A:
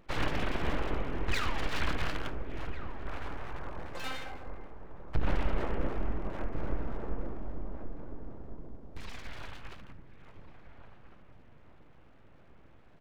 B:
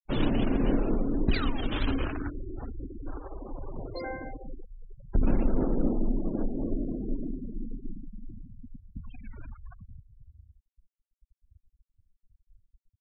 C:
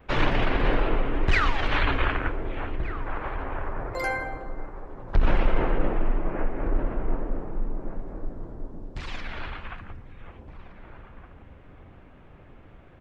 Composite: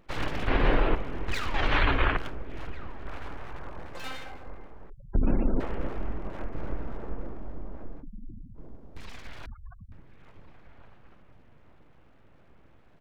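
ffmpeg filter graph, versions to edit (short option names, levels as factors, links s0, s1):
-filter_complex "[2:a]asplit=2[s0][s1];[1:a]asplit=3[s2][s3][s4];[0:a]asplit=6[s5][s6][s7][s8][s9][s10];[s5]atrim=end=0.482[s11];[s0]atrim=start=0.478:end=0.952[s12];[s6]atrim=start=0.948:end=1.542[s13];[s1]atrim=start=1.538:end=2.172[s14];[s7]atrim=start=2.168:end=4.902[s15];[s2]atrim=start=4.898:end=5.602[s16];[s8]atrim=start=5.598:end=8.04[s17];[s3]atrim=start=7.98:end=8.6[s18];[s9]atrim=start=8.54:end=9.462[s19];[s4]atrim=start=9.458:end=9.922[s20];[s10]atrim=start=9.918[s21];[s11][s12]acrossfade=d=0.004:c1=hsin:c2=hsin[s22];[s22][s13]acrossfade=d=0.004:c1=hsin:c2=hsin[s23];[s23][s14]acrossfade=d=0.004:c1=hsin:c2=hsin[s24];[s24][s15]acrossfade=d=0.004:c1=hsin:c2=hsin[s25];[s25][s16]acrossfade=d=0.004:c1=hsin:c2=hsin[s26];[s26][s17]acrossfade=d=0.004:c1=hsin:c2=hsin[s27];[s27][s18]acrossfade=d=0.06:c1=tri:c2=tri[s28];[s28][s19]acrossfade=d=0.06:c1=tri:c2=tri[s29];[s29][s20]acrossfade=d=0.004:c1=hsin:c2=hsin[s30];[s30][s21]acrossfade=d=0.004:c1=hsin:c2=hsin"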